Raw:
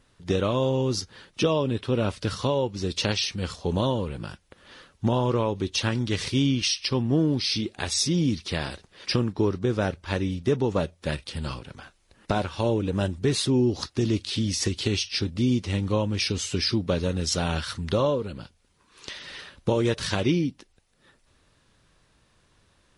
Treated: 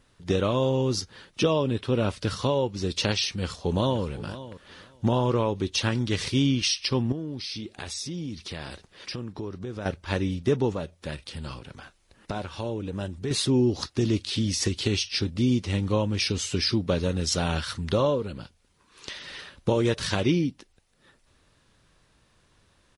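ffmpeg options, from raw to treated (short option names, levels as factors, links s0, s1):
-filter_complex "[0:a]asplit=2[s0][s1];[s1]afade=t=in:st=3.34:d=0.01,afade=t=out:st=4.05:d=0.01,aecho=0:1:520|1040:0.177828|0.0266742[s2];[s0][s2]amix=inputs=2:normalize=0,asettb=1/sr,asplit=3[s3][s4][s5];[s3]atrim=end=7.124[s6];[s4]atrim=start=7.12:end=9.86,asetpts=PTS-STARTPTS,afade=t=in:d=0.004:c=qsin,afade=t=out:st=2.736:d=0.004:c=qsin,acompressor=threshold=0.02:ratio=3:attack=3.2:release=140:knee=1:detection=peak[s7];[s5]atrim=start=9.856[s8];[s6][s7]acrossfade=d=0.004:c1=hsin:c2=qsin[s9];[s9][s8]acrossfade=d=0.004:c1=qsin:c2=hsin,asettb=1/sr,asplit=3[s10][s11][s12];[s10]atrim=end=10.744[s13];[s11]atrim=start=10.74:end=13.31,asetpts=PTS-STARTPTS,afade=t=in:d=0.004:c=qsin,afade=t=out:st=2.566:d=0.004:c=qsin,acompressor=threshold=0.0112:ratio=1.5:attack=3.2:release=140:knee=1:detection=peak[s14];[s12]atrim=start=13.306[s15];[s13][s14]acrossfade=d=0.004:c1=hsin:c2=qsin[s16];[s16][s15]acrossfade=d=0.004:c1=qsin:c2=hsin"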